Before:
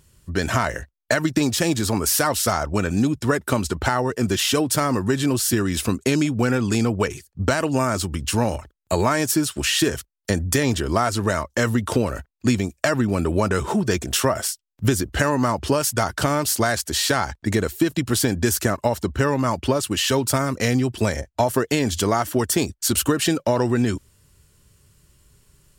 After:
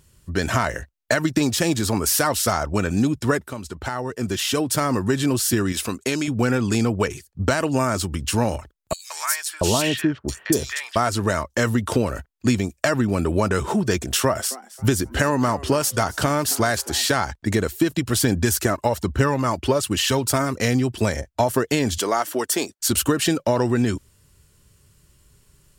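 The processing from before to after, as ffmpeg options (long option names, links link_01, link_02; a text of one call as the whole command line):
ffmpeg -i in.wav -filter_complex "[0:a]asettb=1/sr,asplit=3[link_01][link_02][link_03];[link_01]atrim=end=5.724[link_04];[link_02]atrim=start=5.72:end=6.28,asetpts=PTS-STARTPTS,afade=type=in:duration=0.004:curve=qsin,afade=type=out:start_time=0.556:duration=0.004:curve=qsin,lowshelf=frequency=290:gain=-10[link_05];[link_03]atrim=start=6.276[link_06];[link_04][link_05]acrossfade=duration=0.004:curve1=hsin:curve2=qsin[link_07];[link_07][link_06]acrossfade=duration=0.004:curve1=qsin:curve2=hsin,asettb=1/sr,asplit=3[link_08][link_09][link_10];[link_08]atrim=end=8.934[link_11];[link_09]atrim=start=8.93:end=10.96,asetpts=PTS-STARTPTS,afade=type=in:duration=0.004:curve=qsin,afade=type=out:start_time=2.026:duration=0.004:curve=qsin,acrossover=split=1100|3400[link_12][link_13][link_14];[link_13]adelay=170[link_15];[link_12]adelay=680[link_16];[link_16][link_15][link_14]amix=inputs=3:normalize=0,atrim=end_sample=89523[link_17];[link_10]atrim=start=10.956[link_18];[link_11][link_17]acrossfade=duration=0.004:curve1=hsin:curve2=qsin[link_19];[link_19][link_18]acrossfade=duration=0.004:curve1=qsin:curve2=hsin,asettb=1/sr,asplit=3[link_20][link_21][link_22];[link_20]atrim=end=14.194[link_23];[link_21]atrim=start=14.19:end=17.1,asetpts=PTS-STARTPTS,afade=type=in:duration=0.004:curve=qsin,afade=type=out:start_time=2.906:duration=0.004:curve=qsin,asplit=4[link_24][link_25][link_26][link_27];[link_25]adelay=270,afreqshift=130,volume=-19dB[link_28];[link_26]adelay=540,afreqshift=260,volume=-28.4dB[link_29];[link_27]adelay=810,afreqshift=390,volume=-37.7dB[link_30];[link_24][link_28][link_29][link_30]amix=inputs=4:normalize=0,atrim=end_sample=128331[link_31];[link_22]atrim=start=17.096[link_32];[link_23][link_31]acrossfade=duration=0.004:curve1=hsin:curve2=qsin[link_33];[link_33][link_32]acrossfade=duration=0.004:curve1=qsin:curve2=hsin,asplit=3[link_34][link_35][link_36];[link_34]afade=type=out:start_time=17.99:duration=0.02[link_37];[link_35]aphaser=in_gain=1:out_gain=1:delay=3.3:decay=0.29:speed=1.2:type=triangular,afade=type=in:start_time=17.99:duration=0.02,afade=type=out:start_time=20.56:duration=0.02[link_38];[link_36]afade=type=in:start_time=20.56:duration=0.02[link_39];[link_37][link_38][link_39]amix=inputs=3:normalize=0,asettb=1/sr,asplit=3[link_40][link_41][link_42];[link_40]atrim=end=21.984[link_43];[link_41]atrim=start=21.98:end=22.8,asetpts=PTS-STARTPTS,afade=type=in:duration=0.004:curve=qsin,afade=type=out:start_time=0.816:duration=0.004:curve=qsin,highpass=350[link_44];[link_42]atrim=start=22.796[link_45];[link_43][link_44]acrossfade=duration=0.004:curve1=hsin:curve2=qsin[link_46];[link_46][link_45]acrossfade=duration=0.004:curve1=qsin:curve2=hsin,asplit=2[link_47][link_48];[link_47]atrim=end=3.48,asetpts=PTS-STARTPTS,afade=type=out:start_time=3.476:duration=0.004:curve=hsin:silence=0.237137[link_49];[link_48]atrim=start=3.48,asetpts=PTS-STARTPTS,afade=type=in:duration=1.49:silence=0.237137[link_50];[link_49][link_50]concat=n=2:v=0:a=1" out.wav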